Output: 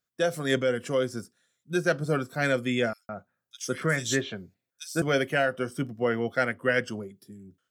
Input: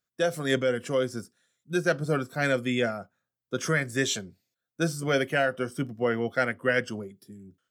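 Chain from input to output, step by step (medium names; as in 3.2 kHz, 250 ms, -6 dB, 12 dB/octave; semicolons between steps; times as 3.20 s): 2.93–5.02 s: bands offset in time highs, lows 160 ms, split 3 kHz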